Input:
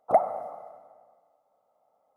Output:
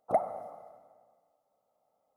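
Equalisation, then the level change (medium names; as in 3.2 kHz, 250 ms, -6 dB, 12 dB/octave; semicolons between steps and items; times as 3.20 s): peaking EQ 1 kHz -7.5 dB 2.6 oct; 0.0 dB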